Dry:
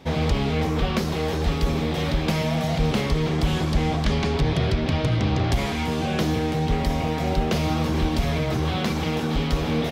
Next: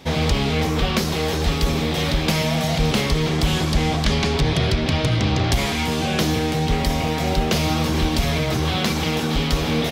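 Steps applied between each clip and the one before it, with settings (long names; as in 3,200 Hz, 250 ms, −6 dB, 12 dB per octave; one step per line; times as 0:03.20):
high-shelf EQ 2,500 Hz +8 dB
level +2 dB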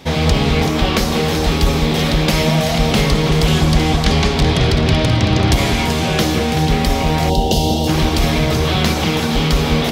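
delay that swaps between a low-pass and a high-pass 191 ms, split 1,300 Hz, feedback 57%, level −4 dB
gain on a spectral selection 0:07.30–0:07.88, 990–2,700 Hz −19 dB
level +4 dB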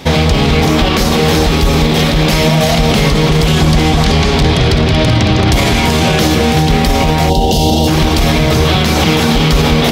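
boost into a limiter +10 dB
level −1 dB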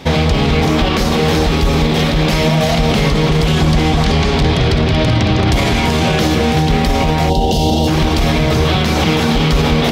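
high-shelf EQ 6,500 Hz −7 dB
level −2.5 dB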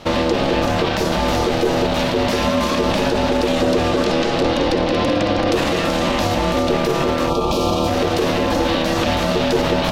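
ring modulation 410 Hz
level −2 dB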